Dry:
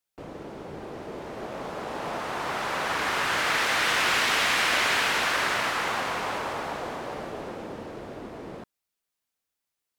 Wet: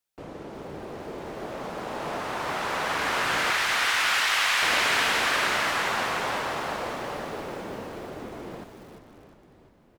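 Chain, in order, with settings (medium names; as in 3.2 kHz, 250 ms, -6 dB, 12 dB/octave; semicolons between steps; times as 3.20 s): 3.50–4.62 s: high-pass 860 Hz 12 dB/octave; frequency-shifting echo 350 ms, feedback 62%, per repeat -30 Hz, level -10 dB; bit-crushed delay 347 ms, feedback 55%, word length 7-bit, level -14 dB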